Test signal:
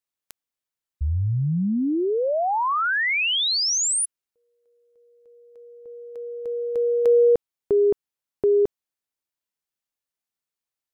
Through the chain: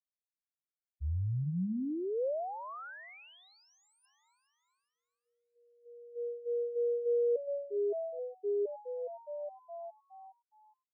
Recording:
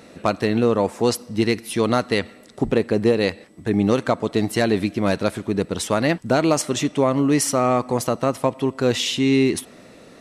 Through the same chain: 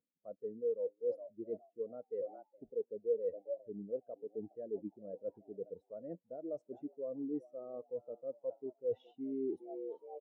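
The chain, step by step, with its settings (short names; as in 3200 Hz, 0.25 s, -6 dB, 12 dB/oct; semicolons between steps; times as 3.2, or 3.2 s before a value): dynamic EQ 490 Hz, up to +8 dB, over -35 dBFS, Q 2.3; frequency-shifting echo 0.416 s, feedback 59%, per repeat +90 Hz, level -12.5 dB; reverse; compressor 8:1, threshold -31 dBFS; reverse; high shelf 2800 Hz -7.5 dB; spectral expander 2.5:1; gain -5.5 dB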